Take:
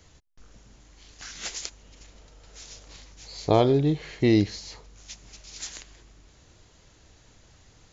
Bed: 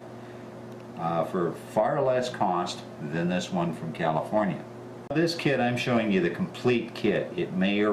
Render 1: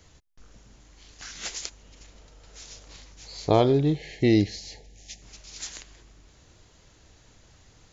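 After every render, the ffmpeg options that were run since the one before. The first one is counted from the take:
-filter_complex "[0:a]asettb=1/sr,asplit=3[s0][s1][s2];[s0]atrim=end=3.964[s3];[s1]atrim=start=3.96:end=5.22,asetpts=PTS-STARTPTS,afade=t=in:d=0.004:c=qsin,afade=t=out:st=1.256:d=0.004:c=qsin,asuperstop=centerf=1200:order=20:qfactor=1.5[s4];[s2]atrim=start=5.216[s5];[s3][s4]acrossfade=d=0.004:c1=hsin:c2=qsin[s6];[s6][s5]acrossfade=d=0.004:c1=qsin:c2=hsin"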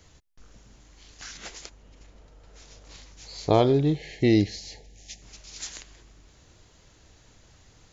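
-filter_complex "[0:a]asettb=1/sr,asplit=3[s0][s1][s2];[s0]atrim=end=1.374[s3];[s1]atrim=start=1.37:end=2.85,asetpts=PTS-STARTPTS,afade=t=in:d=0.004:c=qsin,afade=t=out:st=1.476:d=0.004:c=qsin,highshelf=f=2400:g=-10[s4];[s2]atrim=start=2.846[s5];[s3][s4]acrossfade=d=0.004:c1=hsin:c2=qsin[s6];[s6][s5]acrossfade=d=0.004:c1=qsin:c2=hsin"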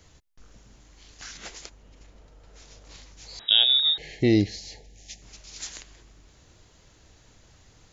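-filter_complex "[0:a]asettb=1/sr,asplit=3[s0][s1][s2];[s0]atrim=end=3.394[s3];[s1]atrim=start=3.39:end=3.98,asetpts=PTS-STARTPTS,afade=t=in:d=0.004:c=qsin,afade=t=out:st=0.586:d=0.004:c=qsin,lowpass=f=3300:t=q:w=0.5098,lowpass=f=3300:t=q:w=0.6013,lowpass=f=3300:t=q:w=0.9,lowpass=f=3300:t=q:w=2.563,afreqshift=-3900[s4];[s2]atrim=start=3.976[s5];[s3][s4]acrossfade=d=0.004:c1=hsin:c2=qsin[s6];[s6][s5]acrossfade=d=0.004:c1=qsin:c2=hsin"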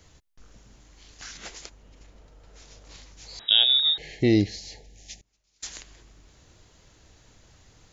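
-filter_complex "[0:a]asettb=1/sr,asplit=3[s0][s1][s2];[s0]atrim=end=5.214[s3];[s1]atrim=start=5.21:end=5.67,asetpts=PTS-STARTPTS,afade=t=in:d=0.004:c=qsin,afade=t=out:st=0.456:d=0.004:c=qsin,agate=range=0.0501:threshold=0.0126:ratio=16:release=100:detection=peak[s4];[s2]atrim=start=5.666[s5];[s3][s4]acrossfade=d=0.004:c1=hsin:c2=qsin[s6];[s6][s5]acrossfade=d=0.004:c1=qsin:c2=hsin"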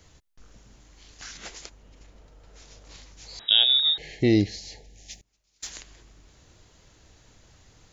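-filter_complex "[0:a]asettb=1/sr,asplit=3[s0][s1][s2];[s0]atrim=end=5.114[s3];[s1]atrim=start=5.11:end=5.7,asetpts=PTS-STARTPTS,afade=t=in:d=0.004:c=qsin,afade=t=out:st=0.586:d=0.004:c=qsin,acrusher=bits=7:mode=log:mix=0:aa=0.000001[s4];[s2]atrim=start=5.696[s5];[s3][s4]acrossfade=d=0.004:c1=hsin:c2=qsin[s6];[s6][s5]acrossfade=d=0.004:c1=qsin:c2=hsin"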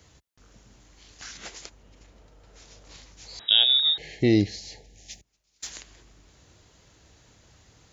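-af "highpass=48"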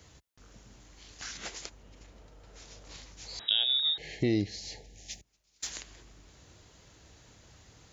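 -af "acompressor=threshold=0.0316:ratio=2"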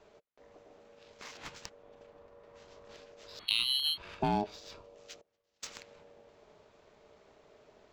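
-af "adynamicsmooth=sensitivity=6.5:basefreq=3100,aeval=exprs='val(0)*sin(2*PI*520*n/s)':c=same"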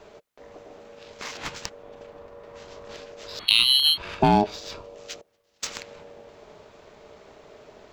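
-af "volume=3.98,alimiter=limit=0.708:level=0:latency=1"

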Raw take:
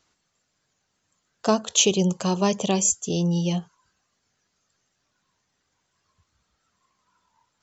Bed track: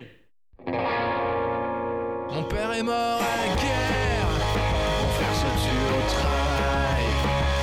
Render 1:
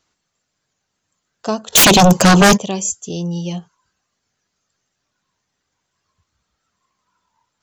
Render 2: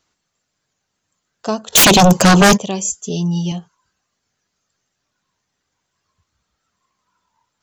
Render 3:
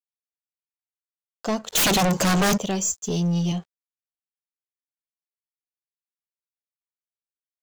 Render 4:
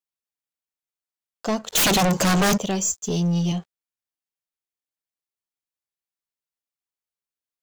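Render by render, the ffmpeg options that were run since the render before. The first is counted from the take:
-filter_complex "[0:a]asplit=3[s0][s1][s2];[s0]afade=t=out:st=1.72:d=0.02[s3];[s1]aeval=exprs='0.562*sin(PI/2*7.08*val(0)/0.562)':c=same,afade=t=in:st=1.72:d=0.02,afade=t=out:st=2.56:d=0.02[s4];[s2]afade=t=in:st=2.56:d=0.02[s5];[s3][s4][s5]amix=inputs=3:normalize=0"
-filter_complex "[0:a]asettb=1/sr,asplit=3[s0][s1][s2];[s0]atrim=end=2.924[s3];[s1]atrim=start=2.92:end=3.52,asetpts=PTS-STARTPTS,afade=t=in:d=0.004:c=qsin,afade=t=out:st=0.596:d=0.004:c=qsin,aecho=1:1:4.8:0.94,atrim=end_sample=26460[s4];[s2]atrim=start=3.516[s5];[s3][s4]acrossfade=d=0.004:c1=hsin:c2=qsin[s6];[s6][s5]acrossfade=d=0.004:c1=qsin:c2=hsin"
-af "aeval=exprs='(tanh(7.94*val(0)+0.1)-tanh(0.1))/7.94':c=same,aeval=exprs='sgn(val(0))*max(abs(val(0))-0.00473,0)':c=same"
-af "volume=1.12"

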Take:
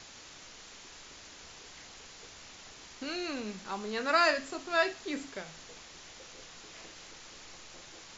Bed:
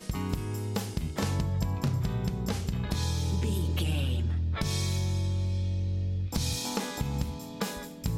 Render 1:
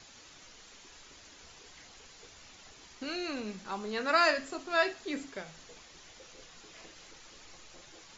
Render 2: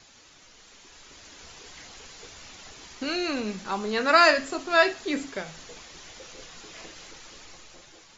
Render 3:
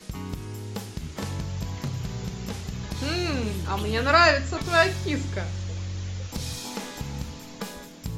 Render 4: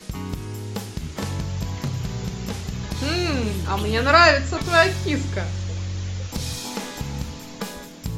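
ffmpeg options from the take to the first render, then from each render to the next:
-af "afftdn=nr=6:nf=-51"
-af "dynaudnorm=f=460:g=5:m=2.51"
-filter_complex "[1:a]volume=0.75[s0];[0:a][s0]amix=inputs=2:normalize=0"
-af "volume=1.58,alimiter=limit=0.708:level=0:latency=1"

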